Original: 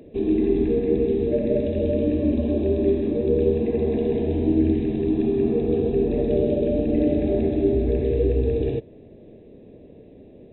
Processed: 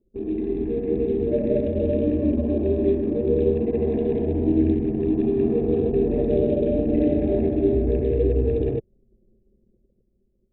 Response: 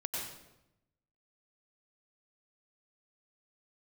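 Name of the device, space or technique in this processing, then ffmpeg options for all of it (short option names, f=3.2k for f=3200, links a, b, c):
voice memo with heavy noise removal: -af "anlmdn=63.1,dynaudnorm=f=150:g=13:m=8dB,volume=-6dB"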